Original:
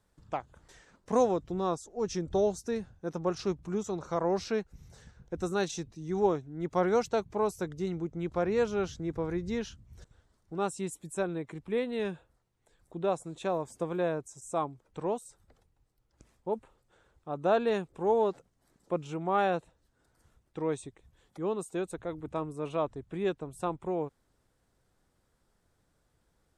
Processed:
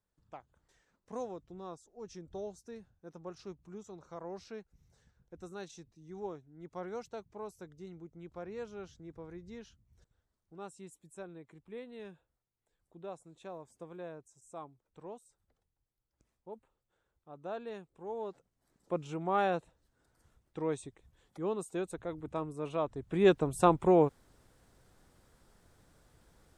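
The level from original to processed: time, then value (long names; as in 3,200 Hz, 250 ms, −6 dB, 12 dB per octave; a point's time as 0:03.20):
0:18.09 −14.5 dB
0:18.97 −2.5 dB
0:22.86 −2.5 dB
0:23.34 +8.5 dB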